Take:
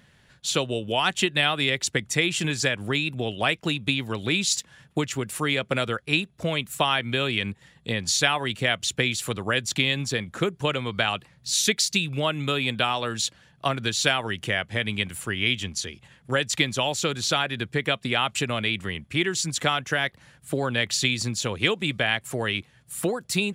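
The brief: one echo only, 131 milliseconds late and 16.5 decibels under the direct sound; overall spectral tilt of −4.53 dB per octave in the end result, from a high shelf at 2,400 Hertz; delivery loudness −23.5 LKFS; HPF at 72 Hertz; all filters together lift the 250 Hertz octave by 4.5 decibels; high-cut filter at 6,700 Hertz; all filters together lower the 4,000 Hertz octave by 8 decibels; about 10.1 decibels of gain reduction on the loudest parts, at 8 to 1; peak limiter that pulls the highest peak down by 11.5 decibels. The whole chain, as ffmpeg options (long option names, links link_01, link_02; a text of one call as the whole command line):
ffmpeg -i in.wav -af "highpass=72,lowpass=6700,equalizer=frequency=250:width_type=o:gain=6,highshelf=frequency=2400:gain=-7,equalizer=frequency=4000:width_type=o:gain=-4,acompressor=threshold=-29dB:ratio=8,alimiter=level_in=2.5dB:limit=-24dB:level=0:latency=1,volume=-2.5dB,aecho=1:1:131:0.15,volume=13.5dB" out.wav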